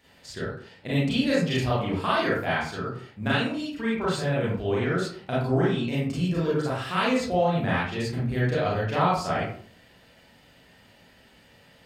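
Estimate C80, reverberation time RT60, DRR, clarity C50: 5.5 dB, 0.50 s, -8.0 dB, 0.0 dB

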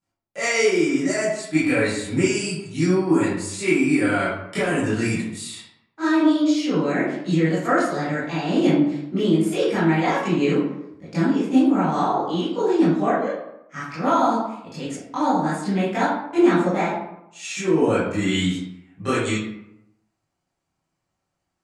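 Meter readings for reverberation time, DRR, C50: 0.80 s, -13.0 dB, 0.0 dB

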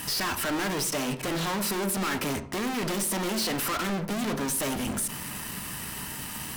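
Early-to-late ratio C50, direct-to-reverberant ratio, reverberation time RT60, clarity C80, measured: 13.0 dB, 8.0 dB, 0.65 s, 17.0 dB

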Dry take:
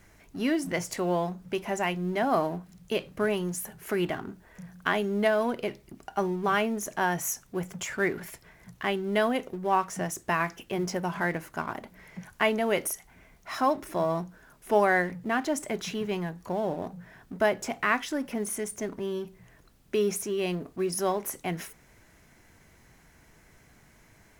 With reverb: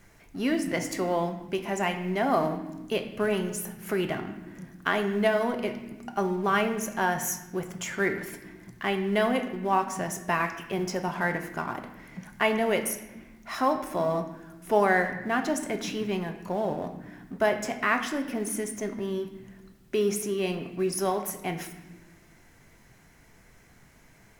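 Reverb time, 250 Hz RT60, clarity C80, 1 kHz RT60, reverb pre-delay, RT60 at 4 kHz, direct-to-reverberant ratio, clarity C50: 1.1 s, 1.8 s, 11.5 dB, 0.95 s, 4 ms, 0.85 s, 6.0 dB, 9.5 dB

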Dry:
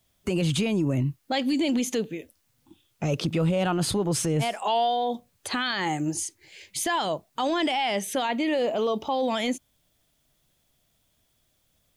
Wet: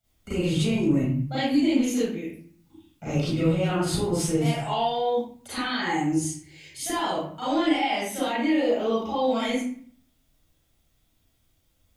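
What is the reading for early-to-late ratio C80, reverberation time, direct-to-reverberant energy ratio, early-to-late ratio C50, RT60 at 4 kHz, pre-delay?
2.5 dB, 0.50 s, -11.5 dB, -2.0 dB, 0.40 s, 33 ms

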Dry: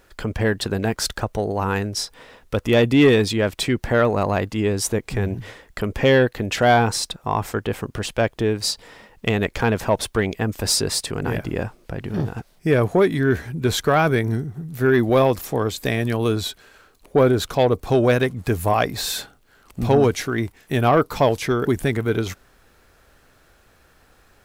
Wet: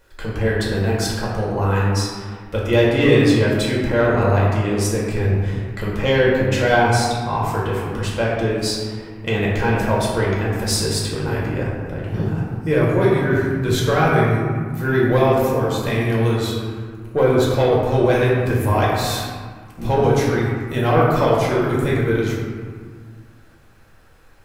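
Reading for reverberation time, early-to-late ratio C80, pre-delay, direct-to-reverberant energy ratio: 1.7 s, 1.5 dB, 4 ms, -5.5 dB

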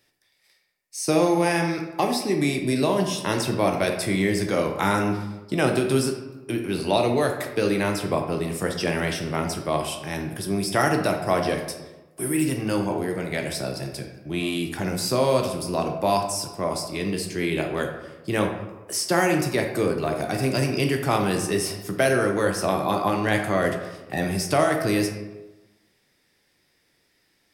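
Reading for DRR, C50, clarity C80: 2.5 dB, 6.0 dB, 8.5 dB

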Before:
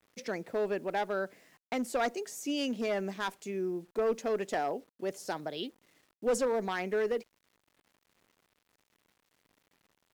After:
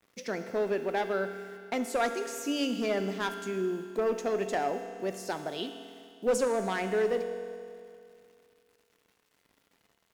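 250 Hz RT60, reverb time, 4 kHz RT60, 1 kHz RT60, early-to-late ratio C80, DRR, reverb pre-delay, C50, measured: 2.4 s, 2.4 s, 2.4 s, 2.4 s, 9.0 dB, 6.5 dB, 4 ms, 8.0 dB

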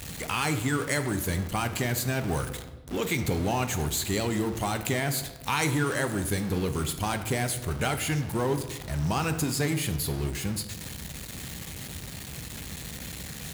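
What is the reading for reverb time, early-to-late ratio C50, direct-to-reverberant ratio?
1.2 s, 10.5 dB, 7.5 dB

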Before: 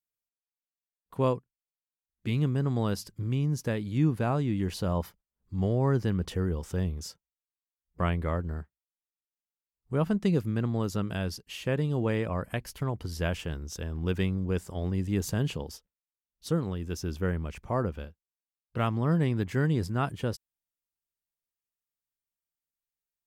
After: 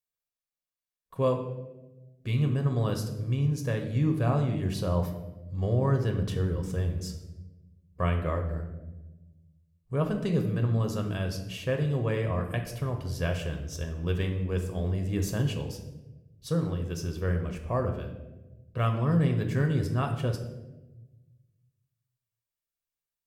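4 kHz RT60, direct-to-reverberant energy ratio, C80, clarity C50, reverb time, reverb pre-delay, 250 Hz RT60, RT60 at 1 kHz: 0.70 s, 4.0 dB, 10.5 dB, 8.0 dB, 1.1 s, 7 ms, 1.6 s, 0.90 s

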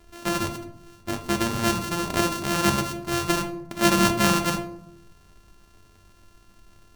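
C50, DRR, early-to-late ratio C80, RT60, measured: 12.0 dB, 5.0 dB, 15.0 dB, 0.70 s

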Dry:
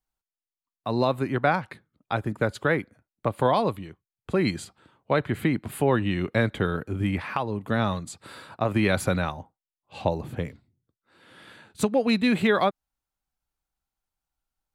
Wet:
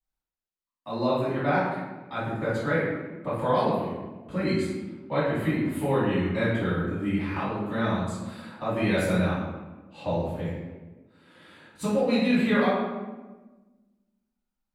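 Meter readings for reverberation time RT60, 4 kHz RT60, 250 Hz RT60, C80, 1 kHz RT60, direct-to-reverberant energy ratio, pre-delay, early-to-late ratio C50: 1.3 s, 0.80 s, 1.8 s, 2.5 dB, 1.2 s, -13.0 dB, 3 ms, -1.0 dB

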